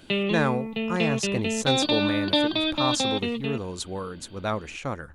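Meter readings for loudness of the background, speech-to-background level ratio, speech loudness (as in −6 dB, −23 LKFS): −25.5 LKFS, −4.5 dB, −30.0 LKFS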